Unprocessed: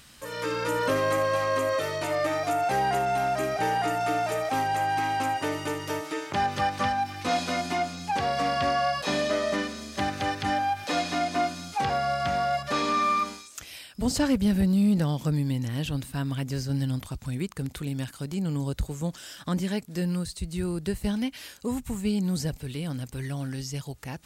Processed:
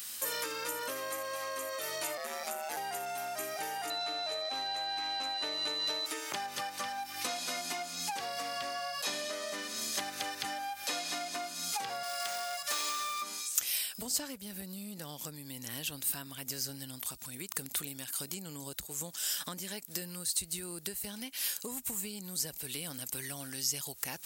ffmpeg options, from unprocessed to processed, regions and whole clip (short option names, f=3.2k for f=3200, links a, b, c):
-filter_complex "[0:a]asettb=1/sr,asplit=3[a][b][c];[a]atrim=end=2.174[d];[b]atrim=start=2.17:end=2.77,asetpts=PTS-STARTPTS,afade=t=in:d=0.004:c=qsin,afade=t=out:st=0.596:d=0.004:c=qsin,lowshelf=f=82:g=-11,aeval=exprs='val(0)*sin(2*PI*78*n/s)':c=same[e];[c]atrim=start=2.766[f];[d][e]acrossfade=d=0.004:c1=hsin:c2=qsin[g];[g][f]acrossfade=d=0.004:c1=qsin:c2=hsin,asettb=1/sr,asplit=3[h][i][j];[h]atrim=end=3.904[k];[i]atrim=start=3.9:end=6.06,asetpts=PTS-STARTPTS,afade=t=in:d=0.004:c=qsin,afade=t=out:st=2.156:d=0.004:c=qsin,equalizer=f=620:w=7.5:g=5.5,aeval=exprs='val(0)+0.0355*sin(2*PI*4000*n/s)':c=same,lowpass=5.3k[l];[j]atrim=start=6.056[m];[k][l]acrossfade=d=0.004:c1=hsin:c2=qsin[n];[n][m]acrossfade=d=0.004:c1=qsin:c2=hsin,asettb=1/sr,asplit=3[o][p][q];[o]atrim=end=12.034[r];[p]atrim=start=12.03:end=13.22,asetpts=PTS-STARTPTS,afade=t=in:d=0.004:c=qsin,afade=t=out:st=1.186:d=0.004:c=qsin,highpass=f=750:p=1,equalizer=f=8.2k:t=o:w=1.1:g=5.5,aeval=exprs='clip(val(0),-1,0.0335)':c=same[s];[q]atrim=start=13.216[t];[r][s]acrossfade=d=0.004:c1=hsin:c2=qsin[u];[u][t]acrossfade=d=0.004:c1=qsin:c2=hsin,asettb=1/sr,asplit=3[v][w][x];[v]atrim=end=14.064[y];[w]atrim=start=14.06:end=18.16,asetpts=PTS-STARTPTS,afade=t=in:d=0.004:c=qsin,afade=t=out:st=4.096:d=0.004:c=qsin,acompressor=mode=upward:threshold=-29dB:ratio=2.5:attack=3.2:release=140:knee=2.83:detection=peak,tremolo=f=1.1:d=0.66[z];[x]atrim=start=18.156[aa];[y][z]acrossfade=d=0.004:c1=hsin:c2=qsin[ab];[ab][aa]acrossfade=d=0.004:c1=qsin:c2=hsin,equalizer=f=97:w=2.1:g=-5,acompressor=threshold=-35dB:ratio=12,aemphasis=mode=production:type=riaa"